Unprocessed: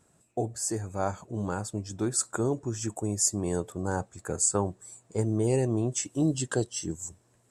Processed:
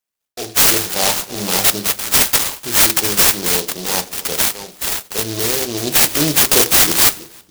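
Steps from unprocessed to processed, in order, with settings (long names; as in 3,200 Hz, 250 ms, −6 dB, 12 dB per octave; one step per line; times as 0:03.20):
0:01.88–0:02.64: Butterworth high-pass 980 Hz 48 dB per octave
noise gate −58 dBFS, range −34 dB
first difference
automatic gain control gain up to 15 dB
transient designer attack −5 dB, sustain +1 dB
0:04.11–0:05.87: downward compressor 6 to 1, threshold −36 dBFS, peak gain reduction 21.5 dB
sine wavefolder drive 18 dB, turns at −4 dBFS
feedback echo with a low-pass in the loop 318 ms, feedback 33%, low-pass 1,600 Hz, level −16 dB
on a send at −8 dB: convolution reverb RT60 0.45 s, pre-delay 3 ms
on the sum: short delay modulated by noise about 4,500 Hz, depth 0.21 ms
level −1 dB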